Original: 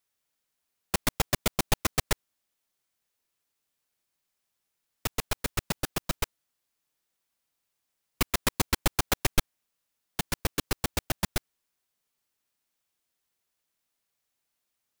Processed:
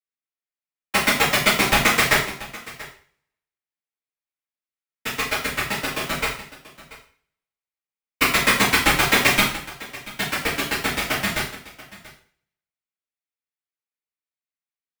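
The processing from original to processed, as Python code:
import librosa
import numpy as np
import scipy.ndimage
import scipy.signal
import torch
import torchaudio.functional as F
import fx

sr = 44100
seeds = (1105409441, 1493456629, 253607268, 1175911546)

p1 = fx.highpass(x, sr, hz=100.0, slope=6)
p2 = fx.peak_eq(p1, sr, hz=2200.0, db=13.0, octaves=1.2)
p3 = fx.sample_hold(p2, sr, seeds[0], rate_hz=3500.0, jitter_pct=0)
p4 = p2 + (p3 * librosa.db_to_amplitude(-7.5))
p5 = p4 + 10.0 ** (-11.0 / 20.0) * np.pad(p4, (int(685 * sr / 1000.0), 0))[:len(p4)]
p6 = fx.rev_double_slope(p5, sr, seeds[1], early_s=0.54, late_s=1.7, knee_db=-25, drr_db=-7.0)
p7 = fx.band_widen(p6, sr, depth_pct=70)
y = p7 * librosa.db_to_amplitude(-3.0)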